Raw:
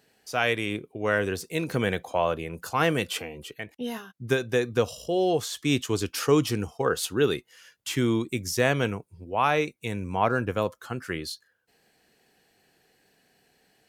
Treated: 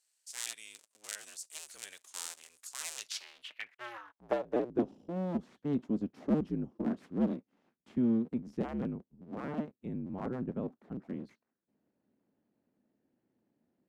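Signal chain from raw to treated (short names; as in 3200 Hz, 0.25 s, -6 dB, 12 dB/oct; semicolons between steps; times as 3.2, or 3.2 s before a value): cycle switcher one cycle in 2, inverted; band-pass sweep 7900 Hz -> 230 Hz, 2.91–4.95; gain -1 dB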